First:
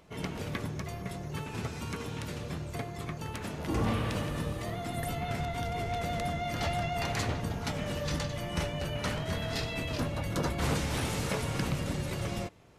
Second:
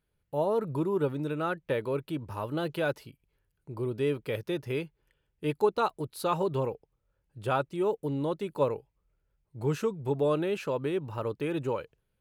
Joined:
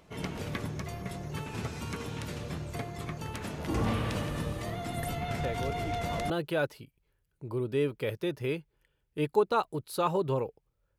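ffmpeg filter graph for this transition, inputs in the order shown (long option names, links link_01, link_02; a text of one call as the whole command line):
ffmpeg -i cue0.wav -i cue1.wav -filter_complex "[1:a]asplit=2[link_01][link_02];[0:a]apad=whole_dur=10.98,atrim=end=10.98,atrim=end=6.302[link_03];[link_02]atrim=start=2.558:end=7.24[link_04];[link_01]atrim=start=1.57:end=2.56,asetpts=PTS-STARTPTS,volume=-7dB,afade=type=in:duration=0.004:curve=hsin,afade=type=out:start_time=0.986:duration=0.004:curve=hsin,adelay=5310[link_05];[link_03][link_04]acrossfade=duration=0.004:curve1=hsin:curve2=hsin[link_06];[link_06][link_05]amix=inputs=2:normalize=0" out.wav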